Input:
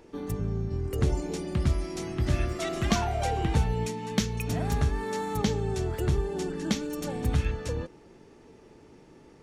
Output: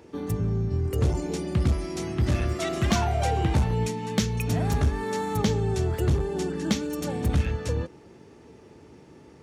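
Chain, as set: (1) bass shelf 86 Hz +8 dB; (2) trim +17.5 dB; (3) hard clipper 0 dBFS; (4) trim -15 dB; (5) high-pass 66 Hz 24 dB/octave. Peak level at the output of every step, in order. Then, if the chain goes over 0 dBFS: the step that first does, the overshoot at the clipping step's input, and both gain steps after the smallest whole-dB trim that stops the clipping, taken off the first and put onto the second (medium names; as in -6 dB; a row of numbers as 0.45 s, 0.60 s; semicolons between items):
-9.0 dBFS, +8.5 dBFS, 0.0 dBFS, -15.0 dBFS, -9.5 dBFS; step 2, 8.5 dB; step 2 +8.5 dB, step 4 -6 dB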